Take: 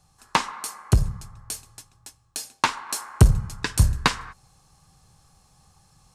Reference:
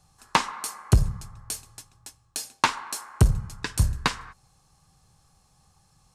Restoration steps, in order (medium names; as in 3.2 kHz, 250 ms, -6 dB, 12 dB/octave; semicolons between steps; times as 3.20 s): gain correction -4 dB, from 2.89 s